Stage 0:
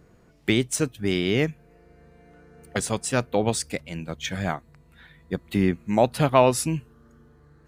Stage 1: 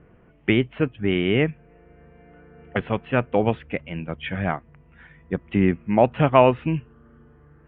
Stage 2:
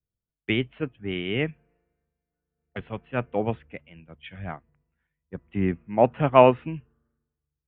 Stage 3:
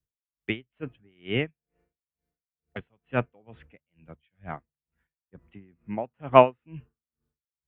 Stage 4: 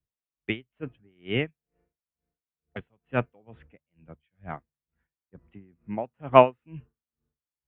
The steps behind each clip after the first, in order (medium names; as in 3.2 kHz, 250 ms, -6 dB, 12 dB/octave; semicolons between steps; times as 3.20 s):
steep low-pass 3.1 kHz 72 dB/octave; trim +2.5 dB
three bands expanded up and down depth 100%; trim -7.5 dB
logarithmic tremolo 2.2 Hz, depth 36 dB; trim +2 dB
tape noise reduction on one side only decoder only